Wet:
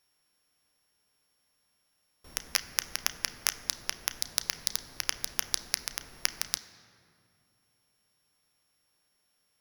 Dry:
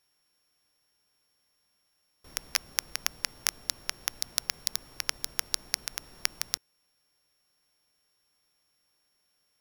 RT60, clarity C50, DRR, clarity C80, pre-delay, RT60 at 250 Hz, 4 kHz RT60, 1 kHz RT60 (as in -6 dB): 2.4 s, 13.5 dB, 11.0 dB, 14.5 dB, 3 ms, 3.4 s, 1.5 s, 2.2 s